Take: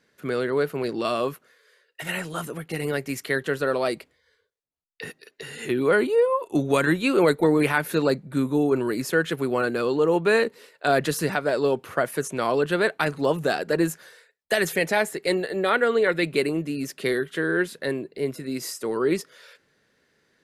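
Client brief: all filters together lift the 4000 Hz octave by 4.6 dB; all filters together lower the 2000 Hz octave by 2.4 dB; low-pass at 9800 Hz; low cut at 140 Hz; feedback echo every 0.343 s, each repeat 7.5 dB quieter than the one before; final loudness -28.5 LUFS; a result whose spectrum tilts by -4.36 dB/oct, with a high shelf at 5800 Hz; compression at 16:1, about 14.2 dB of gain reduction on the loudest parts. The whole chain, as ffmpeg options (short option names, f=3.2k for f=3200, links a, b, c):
-af "highpass=140,lowpass=9.8k,equalizer=f=2k:t=o:g=-4.5,equalizer=f=4k:t=o:g=8,highshelf=f=5.8k:g=-4,acompressor=threshold=-30dB:ratio=16,aecho=1:1:343|686|1029|1372|1715:0.422|0.177|0.0744|0.0312|0.0131,volume=6dB"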